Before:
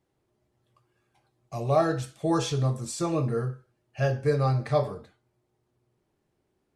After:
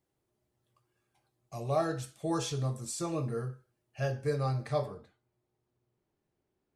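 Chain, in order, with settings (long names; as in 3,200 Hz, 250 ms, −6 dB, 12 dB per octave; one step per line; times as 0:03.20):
high-shelf EQ 6,700 Hz +8.5 dB, from 0:04.86 −3.5 dB
level −7 dB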